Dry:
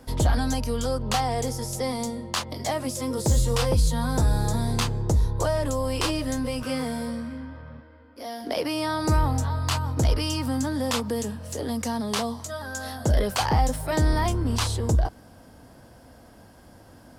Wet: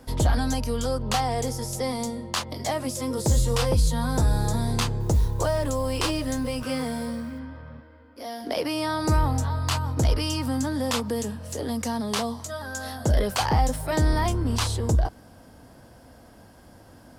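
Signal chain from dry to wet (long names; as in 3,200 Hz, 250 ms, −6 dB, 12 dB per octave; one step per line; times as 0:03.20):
0:05.00–0:07.39: noise that follows the level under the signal 31 dB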